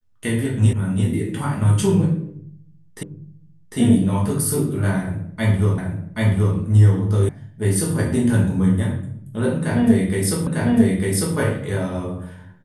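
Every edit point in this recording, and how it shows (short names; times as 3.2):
0.73 sound cut off
3.03 repeat of the last 0.75 s
5.78 repeat of the last 0.78 s
7.29 sound cut off
10.47 repeat of the last 0.9 s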